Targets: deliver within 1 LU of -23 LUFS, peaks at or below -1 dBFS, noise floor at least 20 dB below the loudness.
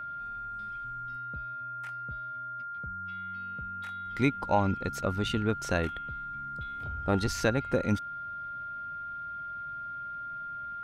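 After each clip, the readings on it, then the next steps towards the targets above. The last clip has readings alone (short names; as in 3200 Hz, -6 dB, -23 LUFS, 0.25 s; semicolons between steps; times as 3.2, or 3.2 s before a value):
steady tone 1400 Hz; tone level -36 dBFS; loudness -33.5 LUFS; peak -11.5 dBFS; loudness target -23.0 LUFS
-> notch 1400 Hz, Q 30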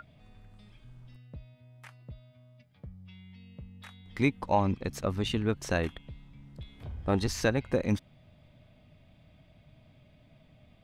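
steady tone none; loudness -30.5 LUFS; peak -11.5 dBFS; loudness target -23.0 LUFS
-> gain +7.5 dB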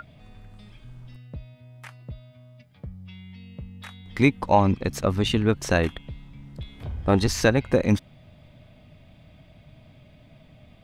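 loudness -23.0 LUFS; peak -4.0 dBFS; noise floor -53 dBFS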